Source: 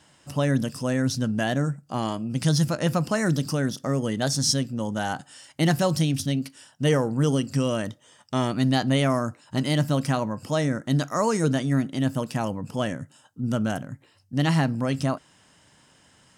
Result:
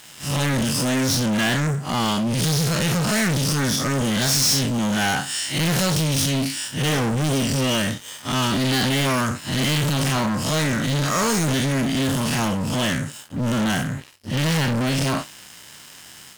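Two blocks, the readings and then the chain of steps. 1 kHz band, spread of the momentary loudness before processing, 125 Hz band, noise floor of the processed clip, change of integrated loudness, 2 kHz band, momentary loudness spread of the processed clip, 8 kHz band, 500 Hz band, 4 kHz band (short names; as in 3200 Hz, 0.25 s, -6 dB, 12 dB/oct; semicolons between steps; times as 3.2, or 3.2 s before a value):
+4.0 dB, 8 LU, +2.5 dB, -44 dBFS, +4.0 dB, +8.0 dB, 7 LU, +9.5 dB, +0.5 dB, +9.0 dB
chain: time blur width 0.106 s; soft clip -23 dBFS, distortion -12 dB; EQ curve 200 Hz 0 dB, 520 Hz -7 dB, 2500 Hz +6 dB; sample leveller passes 5; low shelf 160 Hz -5 dB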